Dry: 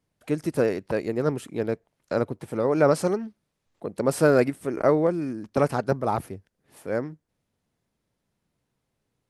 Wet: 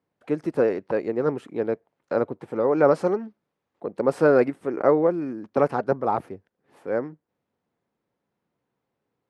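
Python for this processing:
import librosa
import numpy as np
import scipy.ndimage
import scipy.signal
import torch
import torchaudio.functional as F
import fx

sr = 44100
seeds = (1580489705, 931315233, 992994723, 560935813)

y = fx.bandpass_q(x, sr, hz=650.0, q=0.53)
y = fx.notch(y, sr, hz=630.0, q=12.0)
y = y * librosa.db_to_amplitude(3.0)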